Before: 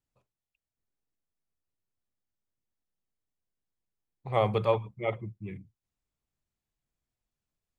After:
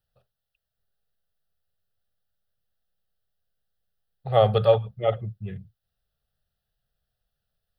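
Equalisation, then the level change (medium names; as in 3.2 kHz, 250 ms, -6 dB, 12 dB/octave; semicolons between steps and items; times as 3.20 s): static phaser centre 1.5 kHz, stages 8; +9.0 dB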